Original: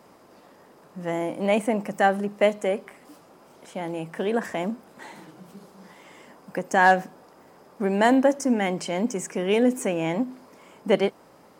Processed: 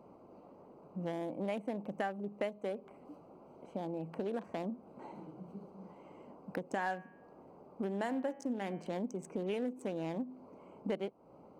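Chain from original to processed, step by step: local Wiener filter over 25 samples; 6.63–8.98 s: de-hum 103.1 Hz, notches 30; compression 4:1, threshold -34 dBFS, peak gain reduction 18.5 dB; trim -2 dB

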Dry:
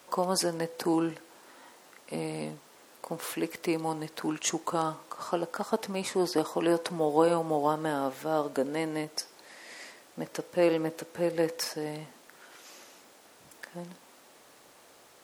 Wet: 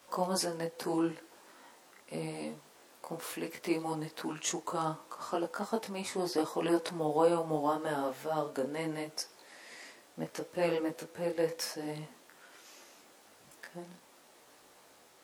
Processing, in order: detune thickener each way 26 cents

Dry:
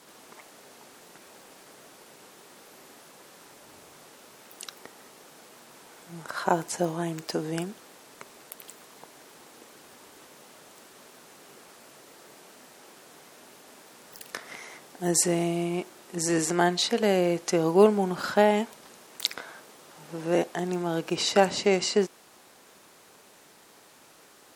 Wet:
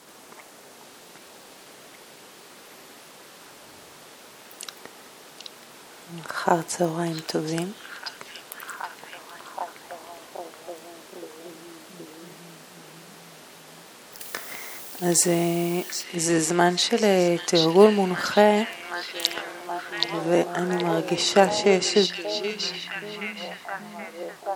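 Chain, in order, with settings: 14.19–16.02 s: added noise blue -44 dBFS; repeats whose band climbs or falls 775 ms, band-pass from 3.7 kHz, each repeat -0.7 oct, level -0.5 dB; trim +3.5 dB

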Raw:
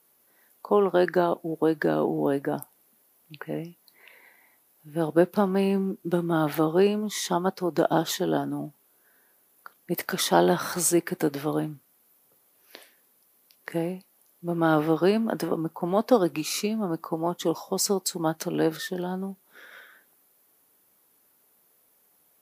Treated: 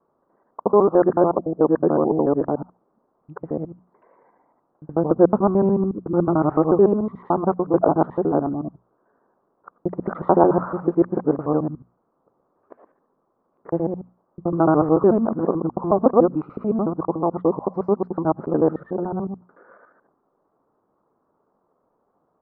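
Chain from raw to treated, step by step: time reversed locally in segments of 73 ms; Chebyshev low-pass 1.2 kHz, order 4; hum notches 60/120/180/240 Hz; trim +6.5 dB

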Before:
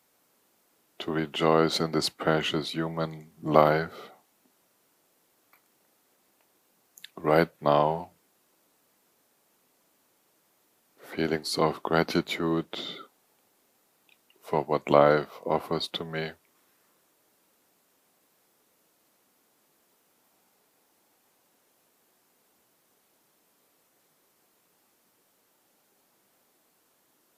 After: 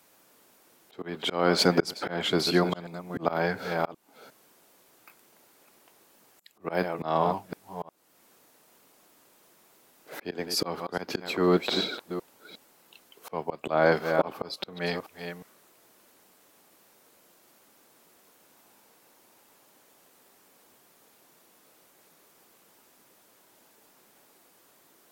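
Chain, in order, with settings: chunks repeated in reverse 391 ms, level -13 dB; tape speed +9%; slow attack 425 ms; trim +7.5 dB

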